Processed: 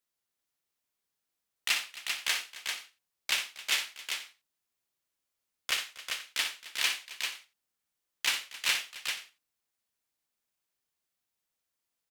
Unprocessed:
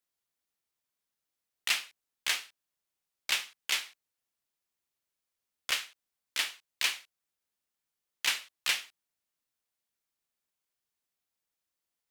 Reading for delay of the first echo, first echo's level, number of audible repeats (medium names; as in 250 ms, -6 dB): 60 ms, -8.5 dB, 4